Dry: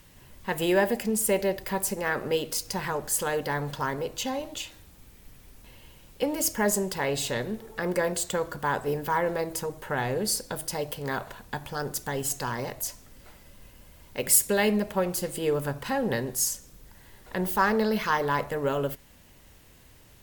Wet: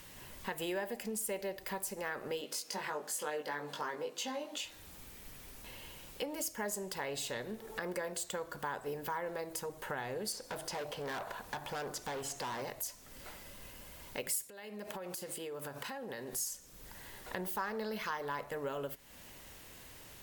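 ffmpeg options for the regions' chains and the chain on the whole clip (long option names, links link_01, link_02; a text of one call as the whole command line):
ffmpeg -i in.wav -filter_complex "[0:a]asettb=1/sr,asplit=3[link_01][link_02][link_03];[link_01]atrim=end=2.414[link_04];[link_02]atrim=start=2.41:end=4.65,asetpts=PTS-STARTPTS,afade=type=in:duration=0.004:curve=qsin,afade=type=out:start_time=2.236:duration=0.004:curve=qsin,highpass=frequency=190:width=0.5412,highpass=frequency=190:width=1.3066,highshelf=frequency=11000:gain=-9,asplit=2[link_05][link_06];[link_06]adelay=20,volume=-3dB[link_07];[link_05][link_07]amix=inputs=2:normalize=0,atrim=end_sample=98784[link_08];[link_03]atrim=start=4.646[link_09];[link_04][link_08]acrossfade=duration=0.004:curve1=hsin:curve2=qsin[link_10];[link_10][link_09]acrossfade=duration=0.004:curve1=qsin:curve2=hsin,asettb=1/sr,asplit=3[link_11][link_12][link_13];[link_11]atrim=end=10.324[link_14];[link_12]atrim=start=10.32:end=12.62,asetpts=PTS-STARTPTS,afade=type=in:duration=0.004:curve=qsin,afade=type=out:start_time=2.296:duration=0.004:curve=qsin,acrossover=split=7000[link_15][link_16];[link_16]acompressor=threshold=-46dB:ratio=4:attack=1:release=60[link_17];[link_15][link_17]amix=inputs=2:normalize=0,equalizer=frequency=810:width_type=o:width=2.1:gain=6,asoftclip=type=hard:threshold=-30dB[link_18];[link_13]atrim=start=12.616[link_19];[link_14][link_18]acrossfade=duration=0.004:curve1=hsin:curve2=qsin[link_20];[link_20][link_19]acrossfade=duration=0.004:curve1=qsin:curve2=hsin,asettb=1/sr,asplit=3[link_21][link_22][link_23];[link_21]atrim=end=14.444[link_24];[link_22]atrim=start=14.44:end=16.33,asetpts=PTS-STARTPTS,afade=type=in:duration=0.004:curve=qsin,afade=type=out:start_time=1.886:duration=0.004:curve=qsin,highpass=frequency=180:poles=1,acompressor=threshold=-36dB:ratio=16:attack=3.2:release=140:knee=1:detection=peak[link_25];[link_23]atrim=start=16.326[link_26];[link_24][link_25]acrossfade=duration=0.004:curve1=hsin:curve2=qsin[link_27];[link_27][link_26]acrossfade=duration=0.004:curve1=qsin:curve2=hsin,lowshelf=frequency=250:gain=-9,acompressor=threshold=-45dB:ratio=3,volume=4dB" out.wav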